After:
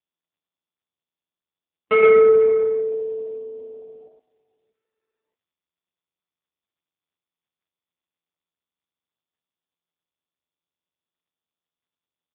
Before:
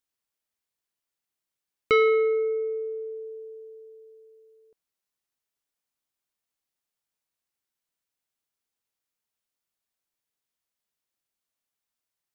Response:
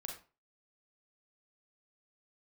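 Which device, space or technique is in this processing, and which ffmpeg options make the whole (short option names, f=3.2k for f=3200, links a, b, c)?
satellite phone: -filter_complex "[0:a]afwtdn=0.0141,asettb=1/sr,asplit=3[a][b][c];[a]atrim=end=2.064[d];[b]atrim=start=2.06:end=2.91,asetpts=PTS-STARTPTS,afade=t=in:d=0.004:c=qsin,afade=t=out:st=0.846:d=0.004:c=qsin,highpass=110[e];[c]atrim=start=2.906[f];[d][e]acrossfade=d=0.004:c1=hsin:c2=qsin[g];[g][f]acrossfade=d=0.004:c1=qsin:c2=hsin,highpass=310,lowpass=3.2k,asplit=2[h][i];[i]adelay=120,lowpass=f=2.5k:p=1,volume=-3.5dB,asplit=2[j][k];[k]adelay=120,lowpass=f=2.5k:p=1,volume=0.19,asplit=2[l][m];[m]adelay=120,lowpass=f=2.5k:p=1,volume=0.19[n];[h][j][l][n]amix=inputs=4:normalize=0,aecho=1:1:499:0.1,volume=6dB" -ar 8000 -c:a libopencore_amrnb -b:a 5150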